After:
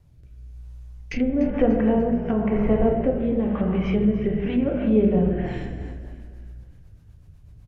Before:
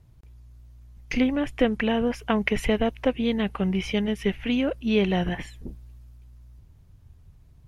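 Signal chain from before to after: plate-style reverb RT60 1.7 s, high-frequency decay 0.65×, DRR -1 dB; low-pass that closes with the level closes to 920 Hz, closed at -17.5 dBFS; rotary cabinet horn 1 Hz, later 8 Hz, at 5.39 s; on a send: frequency-shifting echo 294 ms, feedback 49%, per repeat -46 Hz, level -14.5 dB; on the sum: trim +1.5 dB

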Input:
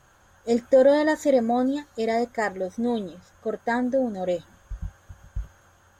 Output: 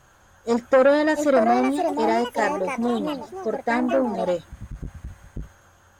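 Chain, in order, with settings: ever faster or slower copies 785 ms, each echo +4 st, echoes 2, each echo -6 dB; transformer saturation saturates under 720 Hz; trim +2.5 dB

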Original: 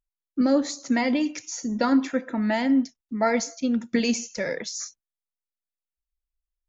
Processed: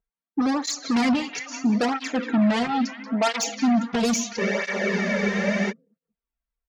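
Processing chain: level-controlled noise filter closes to 1.8 kHz, open at -20 dBFS; comb 4.4 ms, depth 65%; in parallel at -11 dB: sine folder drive 15 dB, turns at -6 dBFS; on the sum: repeats whose band climbs or falls 185 ms, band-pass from 3.2 kHz, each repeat -0.7 oct, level -6 dB; spectral freeze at 4.42 s, 1.27 s; cancelling through-zero flanger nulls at 0.75 Hz, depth 3.6 ms; trim -3.5 dB

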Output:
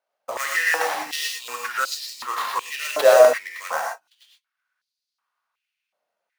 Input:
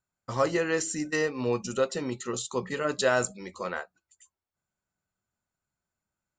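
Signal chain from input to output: sample-rate reducer 7.6 kHz, jitter 20%; gated-style reverb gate 140 ms rising, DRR -1 dB; step-sequenced high-pass 2.7 Hz 610–4500 Hz; trim +2 dB

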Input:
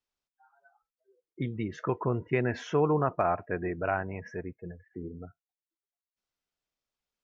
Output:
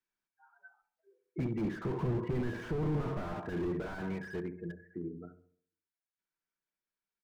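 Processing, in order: Doppler pass-by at 2.54 s, 5 m/s, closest 6.3 m; peaking EQ 1.6 kHz +12.5 dB 0.61 oct; on a send: filtered feedback delay 68 ms, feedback 46%, low-pass 1.5 kHz, level -13.5 dB; on the sum: saturation -24 dBFS, distortion -10 dB; comb 6.6 ms, depth 31%; de-hum 45.41 Hz, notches 28; small resonant body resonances 210/350/960/2300 Hz, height 11 dB, ringing for 45 ms; slew-rate limiter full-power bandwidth 9.7 Hz; trim -1 dB

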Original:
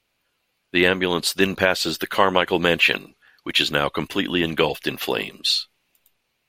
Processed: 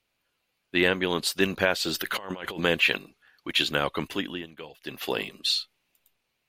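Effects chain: 1.91–2.63 s: compressor with a negative ratio -29 dBFS, ratio -1; 4.11–5.12 s: dip -17.5 dB, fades 0.36 s; trim -5 dB

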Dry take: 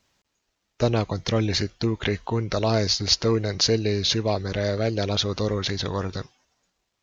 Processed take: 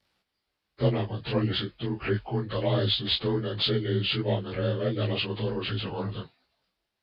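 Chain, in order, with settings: frequency axis rescaled in octaves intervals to 90%; detune thickener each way 48 cents; trim +1 dB

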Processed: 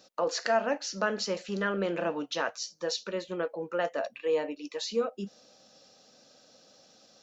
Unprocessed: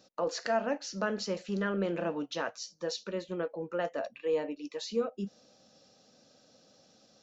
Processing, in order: bass shelf 330 Hz -8.5 dB; trim +5 dB

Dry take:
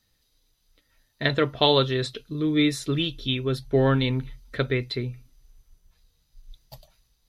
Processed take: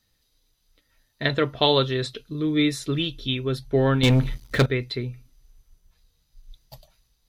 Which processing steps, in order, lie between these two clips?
4.03–4.66 s: waveshaping leveller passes 3

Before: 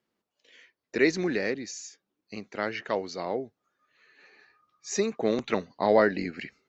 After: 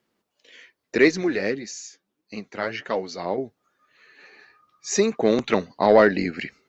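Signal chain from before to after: saturation -10 dBFS, distortion -23 dB; 1.08–3.38 s: flange 1.6 Hz, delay 3.4 ms, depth 8.4 ms, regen +33%; trim +7 dB

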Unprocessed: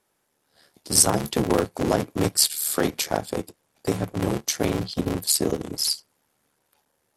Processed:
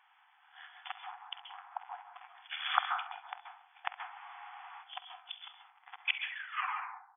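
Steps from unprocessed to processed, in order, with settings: tape stop on the ending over 2.25 s; low-pass that closes with the level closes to 2.2 kHz, closed at -17.5 dBFS; inverted gate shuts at -19 dBFS, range -30 dB; brick-wall FIR band-pass 710–3500 Hz; on a send: early reflections 48 ms -16.5 dB, 67 ms -16.5 dB; on the sum: plate-style reverb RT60 0.53 s, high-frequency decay 0.45×, pre-delay 120 ms, DRR 5 dB; spectral freeze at 4.14 s, 0.68 s; trim +10 dB

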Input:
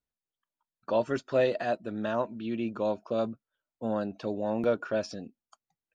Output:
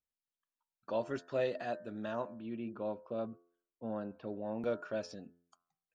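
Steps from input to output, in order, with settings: de-hum 86.4 Hz, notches 21; 2.34–4.64 s: distance through air 310 m; trim -8 dB

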